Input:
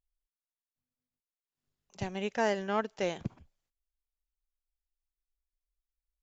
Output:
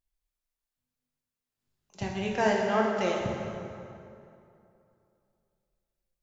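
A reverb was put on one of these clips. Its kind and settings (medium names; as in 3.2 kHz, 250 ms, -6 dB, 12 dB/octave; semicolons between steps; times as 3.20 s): plate-style reverb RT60 2.7 s, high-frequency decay 0.65×, DRR -1.5 dB; trim +1 dB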